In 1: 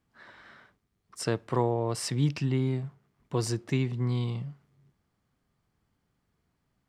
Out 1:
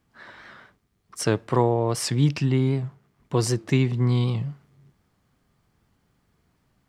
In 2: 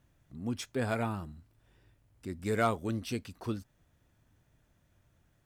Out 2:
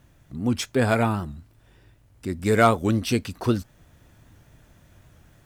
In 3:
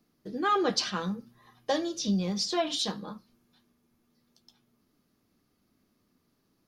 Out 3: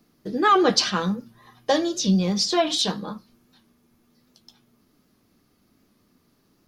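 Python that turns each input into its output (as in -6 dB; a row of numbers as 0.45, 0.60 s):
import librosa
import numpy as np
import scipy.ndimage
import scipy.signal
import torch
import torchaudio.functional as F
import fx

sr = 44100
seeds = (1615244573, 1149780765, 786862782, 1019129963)

y = fx.rider(x, sr, range_db=4, speed_s=2.0)
y = fx.record_warp(y, sr, rpm=78.0, depth_cents=100.0)
y = y * 10.0 ** (-26 / 20.0) / np.sqrt(np.mean(np.square(y)))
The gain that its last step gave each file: +7.0, +11.0, +7.0 dB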